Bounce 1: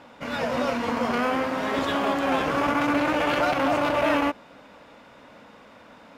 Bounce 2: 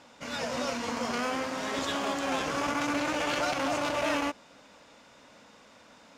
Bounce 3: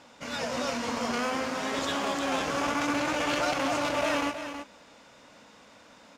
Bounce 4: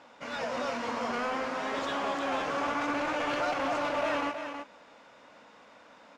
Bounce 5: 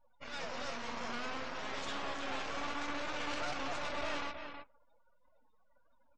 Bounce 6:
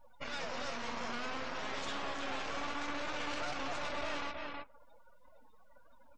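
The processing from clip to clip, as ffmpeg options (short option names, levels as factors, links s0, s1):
-af "equalizer=f=6600:t=o:w=1.5:g=14,volume=0.422"
-af "aecho=1:1:322:0.335,volume=1.12"
-filter_complex "[0:a]asplit=2[s0][s1];[s1]highpass=f=720:p=1,volume=4.47,asoftclip=type=tanh:threshold=0.211[s2];[s0][s2]amix=inputs=2:normalize=0,lowpass=f=1300:p=1,volume=0.501,volume=0.631"
-af "highshelf=f=2300:g=9.5,aeval=exprs='max(val(0),0)':c=same,afftdn=nr=33:nf=-49,volume=0.531"
-af "acompressor=threshold=0.00251:ratio=2,volume=3.16"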